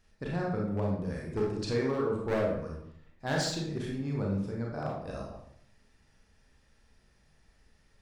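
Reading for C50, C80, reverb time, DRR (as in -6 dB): 2.0 dB, 6.5 dB, 0.70 s, -2.5 dB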